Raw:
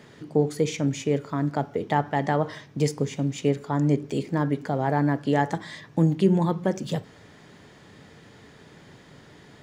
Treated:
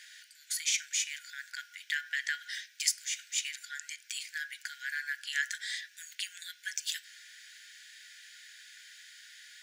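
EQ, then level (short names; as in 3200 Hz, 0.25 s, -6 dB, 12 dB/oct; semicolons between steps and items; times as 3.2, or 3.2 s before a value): brick-wall FIR high-pass 1400 Hz; high shelf 3900 Hz +11 dB; 0.0 dB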